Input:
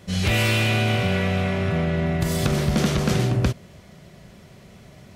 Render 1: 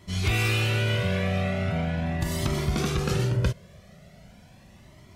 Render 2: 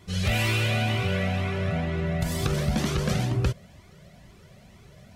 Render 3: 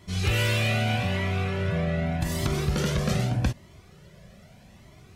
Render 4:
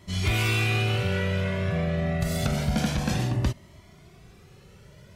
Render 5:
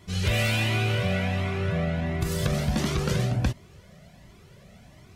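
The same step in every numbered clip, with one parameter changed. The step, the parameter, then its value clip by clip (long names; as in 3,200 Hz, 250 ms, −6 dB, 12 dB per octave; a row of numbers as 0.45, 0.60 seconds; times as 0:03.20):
flanger whose copies keep moving one way, speed: 0.4, 2.1, 0.82, 0.27, 1.4 Hertz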